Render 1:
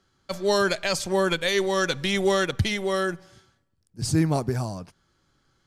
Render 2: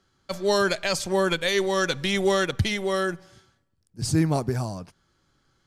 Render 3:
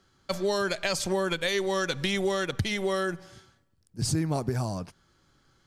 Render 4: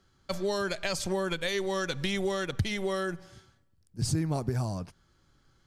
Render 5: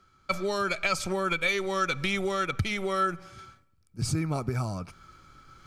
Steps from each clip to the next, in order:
no audible change
compression 5:1, threshold -27 dBFS, peak gain reduction 10 dB; trim +2.5 dB
bass shelf 110 Hz +7.5 dB; trim -3.5 dB
reverse; upward compressor, threshold -45 dBFS; reverse; small resonant body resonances 1.3/2.3 kHz, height 17 dB, ringing for 35 ms

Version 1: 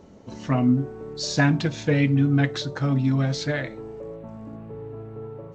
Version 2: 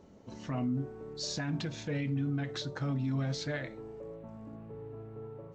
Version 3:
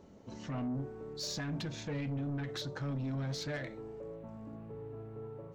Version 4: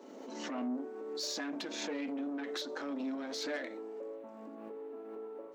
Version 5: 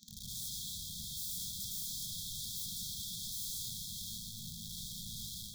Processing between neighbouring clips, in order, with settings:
peak limiter -17.5 dBFS, peak gain reduction 11 dB; trim -8 dB
saturation -32 dBFS, distortion -13 dB
elliptic high-pass 250 Hz, stop band 50 dB; swell ahead of each attack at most 30 dB/s; trim +2 dB
integer overflow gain 43.5 dB; brick-wall FIR band-stop 220–3200 Hz; reverberation RT60 5.2 s, pre-delay 44 ms, DRR 2.5 dB; trim +7.5 dB

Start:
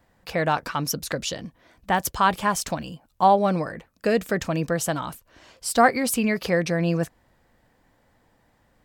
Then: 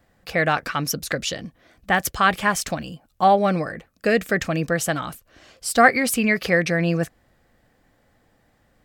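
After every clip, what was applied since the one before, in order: band-stop 950 Hz, Q 5.8; dynamic bell 2 kHz, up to +7 dB, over -39 dBFS, Q 1.4; trim +1.5 dB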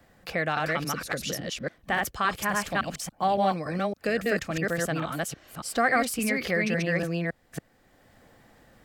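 chunks repeated in reverse 281 ms, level -0.5 dB; three bands compressed up and down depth 40%; trim -8.5 dB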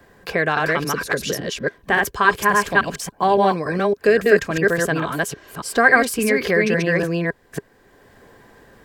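small resonant body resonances 410/1000/1600 Hz, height 12 dB, ringing for 45 ms; trim +5.5 dB

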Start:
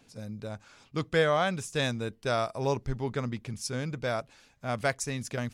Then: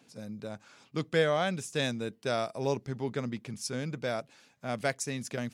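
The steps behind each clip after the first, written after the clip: Chebyshev high-pass 170 Hz, order 2; dynamic bell 1.1 kHz, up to -5 dB, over -45 dBFS, Q 1.6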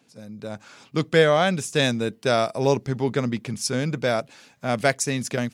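level rider gain up to 10 dB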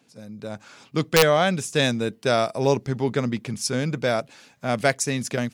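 integer overflow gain 6 dB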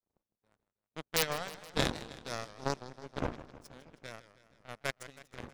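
wind noise 420 Hz -29 dBFS; power-law waveshaper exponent 3; modulated delay 159 ms, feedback 62%, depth 172 cents, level -15 dB; trim -3.5 dB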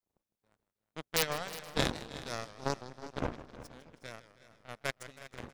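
delay 365 ms -15.5 dB

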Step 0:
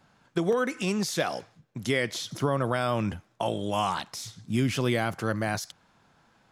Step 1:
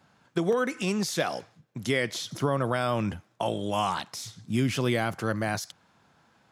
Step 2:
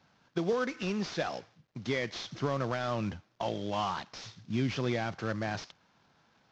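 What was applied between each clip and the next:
high-pass 62 Hz
CVSD coder 32 kbps; trim -4.5 dB

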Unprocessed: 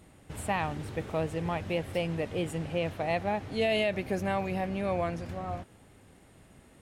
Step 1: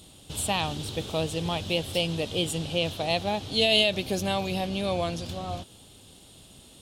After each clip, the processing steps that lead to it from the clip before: resonant high shelf 2.6 kHz +9.5 dB, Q 3; trim +2.5 dB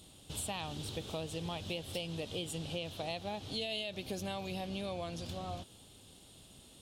compression 5:1, threshold -30 dBFS, peak gain reduction 12 dB; trim -6 dB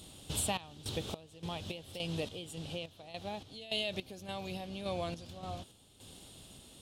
random-step tremolo, depth 90%; trim +5.5 dB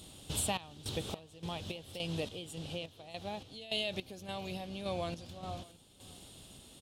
delay 620 ms -22 dB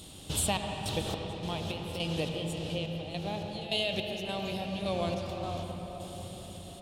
reverberation RT60 5.2 s, pre-delay 76 ms, DRR 2.5 dB; trim +4 dB

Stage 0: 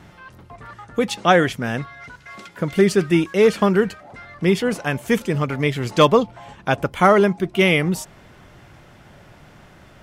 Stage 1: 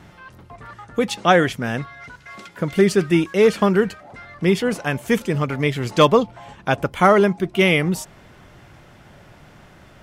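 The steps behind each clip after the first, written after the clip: no audible change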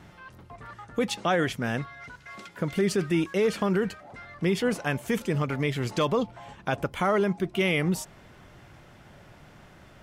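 peak limiter -11 dBFS, peak gain reduction 8.5 dB; trim -4.5 dB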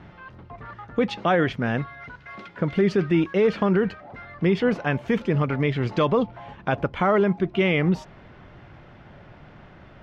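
distance through air 250 m; trim +5 dB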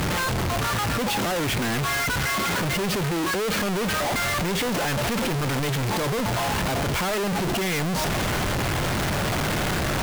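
one-bit comparator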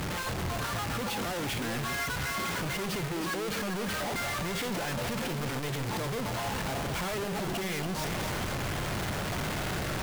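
chunks repeated in reverse 220 ms, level -6 dB; trim -9 dB

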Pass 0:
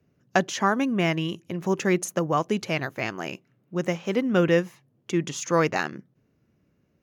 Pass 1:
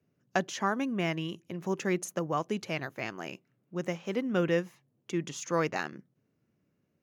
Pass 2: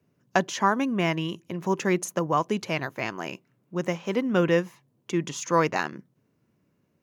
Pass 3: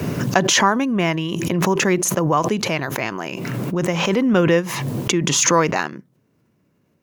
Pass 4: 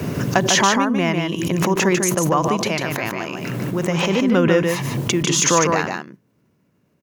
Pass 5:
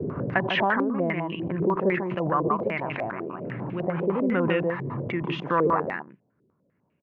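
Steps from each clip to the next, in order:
high-pass 95 Hz; trim -7 dB
peaking EQ 990 Hz +7 dB 0.22 oct; trim +5.5 dB
swell ahead of each attack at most 22 dB/s; trim +5 dB
delay 148 ms -4.5 dB; trim -1 dB
distance through air 320 m; step-sequenced low-pass 10 Hz 420–2600 Hz; trim -8.5 dB

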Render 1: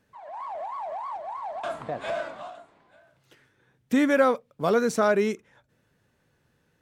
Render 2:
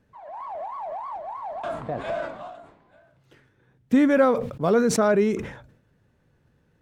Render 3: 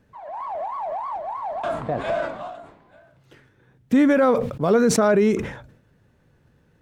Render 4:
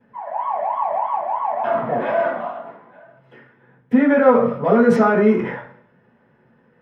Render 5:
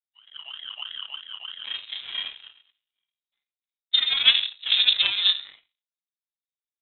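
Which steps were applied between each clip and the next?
tilt EQ -2 dB/octave; decay stretcher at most 82 dB/s
peak limiter -14.5 dBFS, peak gain reduction 6.5 dB; trim +4.5 dB
in parallel at -6 dB: saturation -27 dBFS, distortion -4 dB; on the sum: reverberation RT60 0.50 s, pre-delay 3 ms, DRR -13 dB; trim -14.5 dB
power-law waveshaper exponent 2; frequency inversion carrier 3.9 kHz

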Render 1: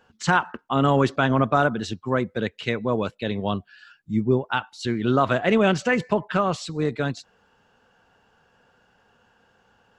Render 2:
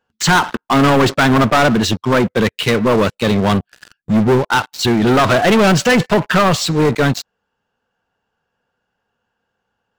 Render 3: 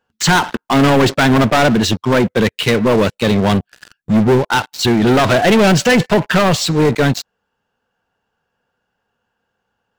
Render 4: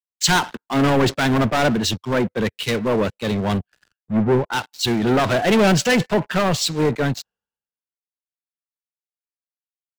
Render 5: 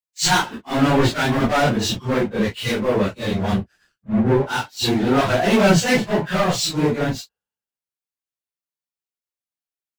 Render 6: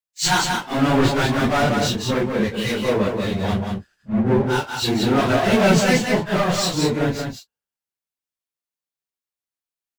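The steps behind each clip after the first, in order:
waveshaping leveller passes 5; trim -2 dB
dynamic bell 1.2 kHz, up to -5 dB, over -28 dBFS, Q 3; trim +1 dB
three bands expanded up and down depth 100%; trim -6 dB
phase randomisation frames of 100 ms
delay 183 ms -4.5 dB; trim -1.5 dB

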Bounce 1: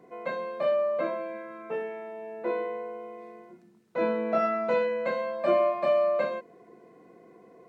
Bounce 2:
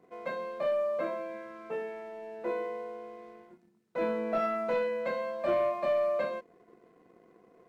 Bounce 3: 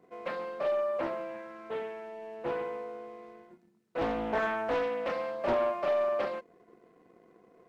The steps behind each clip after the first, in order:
waveshaping leveller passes 1; trim -7 dB
loudspeaker Doppler distortion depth 0.6 ms

